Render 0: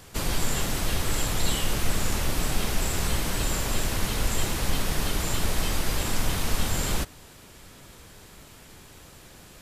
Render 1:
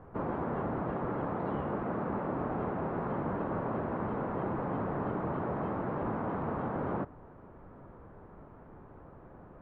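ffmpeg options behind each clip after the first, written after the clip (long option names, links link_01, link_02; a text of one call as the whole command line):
ffmpeg -i in.wav -af "lowpass=frequency=1200:width=0.5412,lowpass=frequency=1200:width=1.3066,afftfilt=real='re*lt(hypot(re,im),0.224)':imag='im*lt(hypot(re,im),0.224)':win_size=1024:overlap=0.75,lowshelf=frequency=95:gain=-6.5,volume=1dB" out.wav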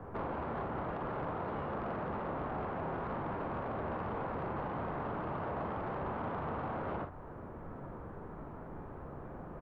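ffmpeg -i in.wav -filter_complex "[0:a]acrossover=split=97|500[link_01][link_02][link_03];[link_01]acompressor=threshold=-51dB:ratio=4[link_04];[link_02]acompressor=threshold=-50dB:ratio=4[link_05];[link_03]acompressor=threshold=-43dB:ratio=4[link_06];[link_04][link_05][link_06]amix=inputs=3:normalize=0,asoftclip=type=tanh:threshold=-37dB,aecho=1:1:43|56:0.355|0.316,volume=5.5dB" out.wav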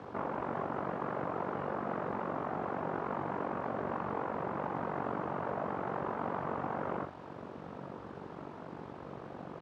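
ffmpeg -i in.wav -af "tremolo=f=47:d=0.75,acrusher=bits=9:mix=0:aa=0.000001,highpass=150,lowpass=2700,volume=5.5dB" out.wav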